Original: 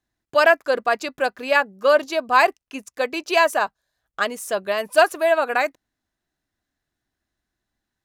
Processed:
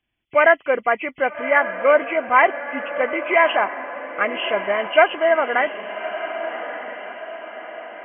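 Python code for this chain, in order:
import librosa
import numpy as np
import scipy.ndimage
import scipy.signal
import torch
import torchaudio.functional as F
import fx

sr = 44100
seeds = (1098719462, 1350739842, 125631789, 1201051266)

y = fx.freq_compress(x, sr, knee_hz=1900.0, ratio=4.0)
y = fx.echo_diffused(y, sr, ms=1197, feedback_pct=50, wet_db=-10.5)
y = y * 10.0 ** (1.0 / 20.0)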